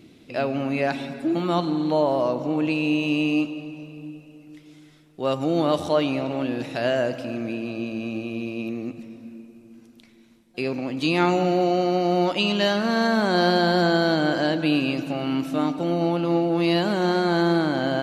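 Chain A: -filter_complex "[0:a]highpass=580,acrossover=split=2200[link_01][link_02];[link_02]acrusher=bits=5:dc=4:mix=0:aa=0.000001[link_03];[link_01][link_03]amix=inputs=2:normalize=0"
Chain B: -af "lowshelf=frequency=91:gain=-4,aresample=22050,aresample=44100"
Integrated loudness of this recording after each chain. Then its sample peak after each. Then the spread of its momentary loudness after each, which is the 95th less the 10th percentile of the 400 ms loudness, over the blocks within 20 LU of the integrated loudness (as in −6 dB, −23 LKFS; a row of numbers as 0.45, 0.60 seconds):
−27.5, −23.5 LKFS; −9.0, −8.0 dBFS; 15, 10 LU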